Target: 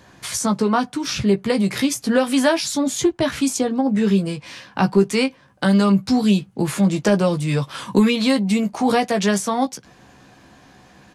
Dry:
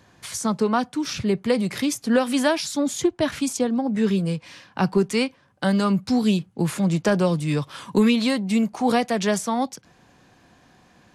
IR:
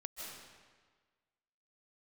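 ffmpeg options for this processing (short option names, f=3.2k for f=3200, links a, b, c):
-filter_complex "[0:a]asplit=2[a][b];[b]acompressor=threshold=-28dB:ratio=6,volume=-1dB[c];[a][c]amix=inputs=2:normalize=0,asplit=2[d][e];[e]adelay=15,volume=-6dB[f];[d][f]amix=inputs=2:normalize=0"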